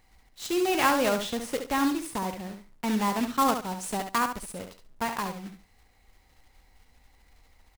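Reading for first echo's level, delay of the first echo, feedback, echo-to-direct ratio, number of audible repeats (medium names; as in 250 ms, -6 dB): -7.5 dB, 69 ms, 19%, -7.5 dB, 2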